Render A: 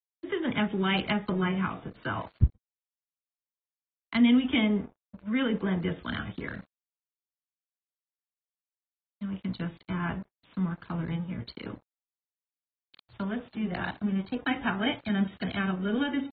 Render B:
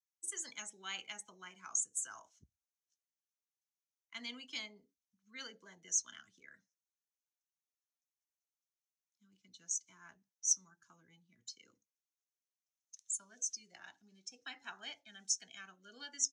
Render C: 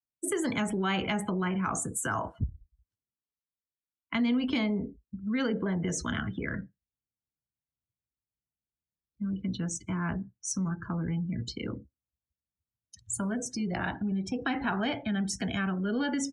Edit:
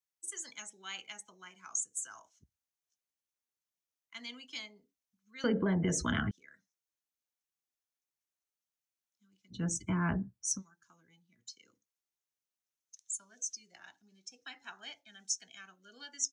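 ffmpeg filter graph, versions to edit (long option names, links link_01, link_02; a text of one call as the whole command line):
ffmpeg -i take0.wav -i take1.wav -i take2.wav -filter_complex "[2:a]asplit=2[link_01][link_02];[1:a]asplit=3[link_03][link_04][link_05];[link_03]atrim=end=5.442[link_06];[link_01]atrim=start=5.438:end=6.312[link_07];[link_04]atrim=start=6.308:end=9.66[link_08];[link_02]atrim=start=9.5:end=10.63[link_09];[link_05]atrim=start=10.47[link_10];[link_06][link_07]acrossfade=duration=0.004:curve1=hsin:curve2=hsin[link_11];[link_11][link_08]acrossfade=duration=0.004:curve1=hsin:curve2=hsin[link_12];[link_12][link_09]acrossfade=duration=0.16:curve1=tri:curve2=tri[link_13];[link_13][link_10]acrossfade=duration=0.16:curve1=tri:curve2=tri" out.wav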